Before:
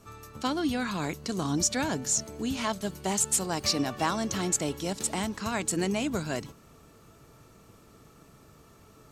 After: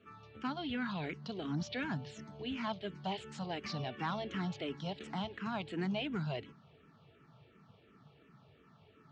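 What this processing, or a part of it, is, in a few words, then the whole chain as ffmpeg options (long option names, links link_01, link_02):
barber-pole phaser into a guitar amplifier: -filter_complex "[0:a]asplit=2[link_01][link_02];[link_02]afreqshift=-2.8[link_03];[link_01][link_03]amix=inputs=2:normalize=1,asoftclip=type=tanh:threshold=-23dB,highpass=110,equalizer=frequency=150:width_type=q:width=4:gain=5,equalizer=frequency=310:width_type=q:width=4:gain=-5,equalizer=frequency=540:width_type=q:width=4:gain=-4,equalizer=frequency=1100:width_type=q:width=4:gain=-4,equalizer=frequency=3100:width_type=q:width=4:gain=4,lowpass=frequency=3700:width=0.5412,lowpass=frequency=3700:width=1.3066,volume=-3dB"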